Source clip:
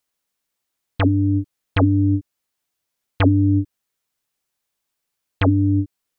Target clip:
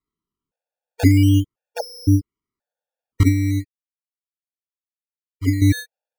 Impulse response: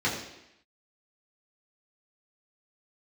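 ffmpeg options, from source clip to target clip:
-filter_complex "[0:a]asettb=1/sr,asplit=3[s0][s1][s2];[s0]atrim=end=3.234[s3];[s1]atrim=start=3.23:end=5.62,asetpts=PTS-STARTPTS,afade=t=in:d=0.004:c=qsin,afade=t=out:st=2.386:d=0.004:c=qsin,agate=range=0.0224:threshold=0.398:ratio=3:detection=peak[s4];[s2]atrim=start=5.616[s5];[s3][s4]acrossfade=d=0.004:c1=hsin:c2=qsin[s6];[s6][s5]acrossfade=d=0.004:c1=qsin:c2=hsin,tiltshelf=f=890:g=9,acrusher=samples=15:mix=1:aa=0.000001:lfo=1:lforange=15:lforate=0.38,afftfilt=real='re*gt(sin(2*PI*0.96*pts/sr)*(1-2*mod(floor(b*sr/1024/470),2)),0)':imag='im*gt(sin(2*PI*0.96*pts/sr)*(1-2*mod(floor(b*sr/1024/470),2)),0)':win_size=1024:overlap=0.75,volume=0.668"

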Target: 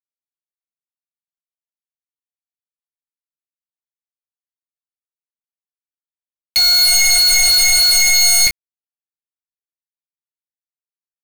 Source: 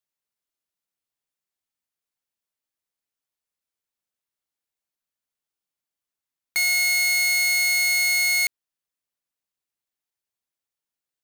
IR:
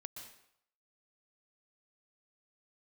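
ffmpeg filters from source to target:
-af "flanger=delay=8.3:depth=1.7:regen=-66:speed=0.3:shape=sinusoidal,aeval=exprs='0.126*sin(PI/2*4.47*val(0)/0.126)':c=same,acrusher=bits=4:mix=0:aa=0.000001,volume=2.66"

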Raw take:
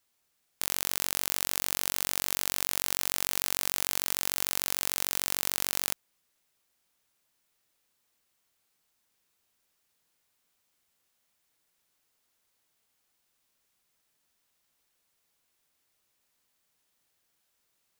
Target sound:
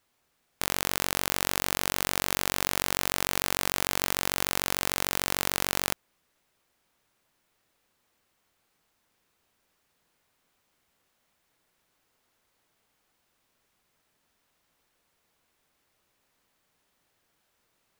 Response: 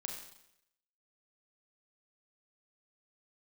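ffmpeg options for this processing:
-af "highshelf=f=3100:g=-10.5,volume=2.82"

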